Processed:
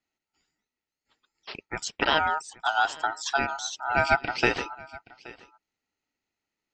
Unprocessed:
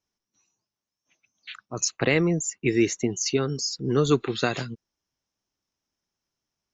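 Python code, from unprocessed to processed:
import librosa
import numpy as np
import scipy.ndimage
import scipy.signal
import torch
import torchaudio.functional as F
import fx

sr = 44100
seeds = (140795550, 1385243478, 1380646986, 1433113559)

y = fx.cabinet(x, sr, low_hz=200.0, low_slope=12, high_hz=4700.0, hz=(360.0, 550.0, 810.0, 1500.0, 2600.0), db=(-4, -9, 9, 6, -6))
y = y + 10.0 ** (-21.0 / 20.0) * np.pad(y, (int(824 * sr / 1000.0), 0))[:len(y)]
y = y * np.sin(2.0 * np.pi * 1100.0 * np.arange(len(y)) / sr)
y = y * 10.0 ** (4.0 / 20.0)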